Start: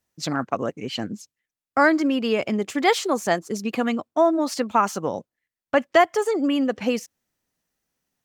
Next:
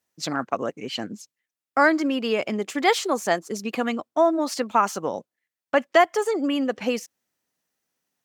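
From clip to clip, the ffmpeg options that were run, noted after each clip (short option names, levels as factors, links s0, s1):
-af "highpass=f=250:p=1"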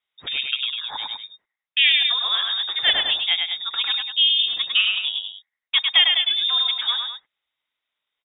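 -af "aecho=1:1:102|201.2:0.631|0.316,lowpass=f=3300:t=q:w=0.5098,lowpass=f=3300:t=q:w=0.6013,lowpass=f=3300:t=q:w=0.9,lowpass=f=3300:t=q:w=2.563,afreqshift=-3900"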